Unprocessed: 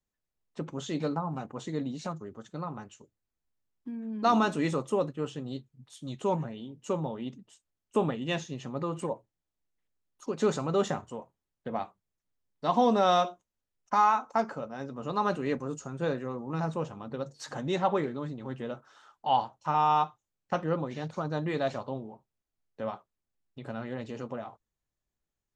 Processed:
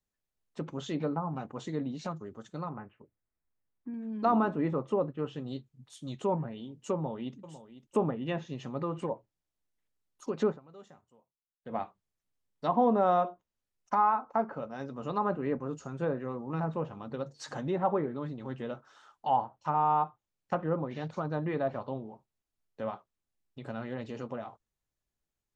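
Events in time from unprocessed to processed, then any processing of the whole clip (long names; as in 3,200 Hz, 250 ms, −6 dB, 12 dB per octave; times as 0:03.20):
0:02.69–0:03.94: Butterworth low-pass 2,300 Hz
0:06.93–0:07.36: delay throw 500 ms, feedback 25%, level −14.5 dB
0:10.45–0:11.76: duck −23.5 dB, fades 0.15 s
whole clip: treble cut that deepens with the level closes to 1,300 Hz, closed at −25.5 dBFS; level −1 dB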